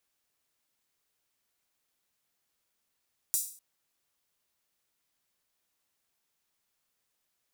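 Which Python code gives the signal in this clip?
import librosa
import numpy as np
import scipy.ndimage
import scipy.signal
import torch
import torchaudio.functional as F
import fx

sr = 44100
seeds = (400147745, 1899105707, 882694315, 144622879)

y = fx.drum_hat_open(sr, length_s=0.25, from_hz=7600.0, decay_s=0.46)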